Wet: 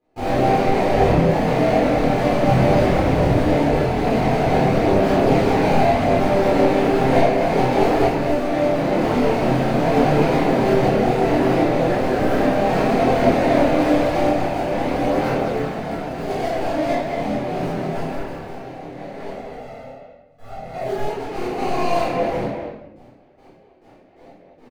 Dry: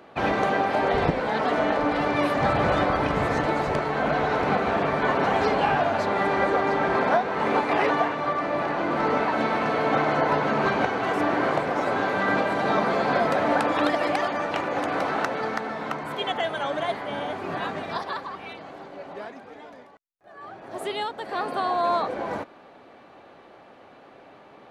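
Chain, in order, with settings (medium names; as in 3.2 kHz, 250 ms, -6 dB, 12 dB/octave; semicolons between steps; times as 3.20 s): median filter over 41 samples; gate with hold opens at -43 dBFS; 19.29–20.79 s: comb 1.5 ms, depth 92%; speakerphone echo 220 ms, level -6 dB; reverberation RT60 0.85 s, pre-delay 6 ms, DRR -8.5 dB; chorus voices 2, 0.49 Hz, delay 27 ms, depth 3.8 ms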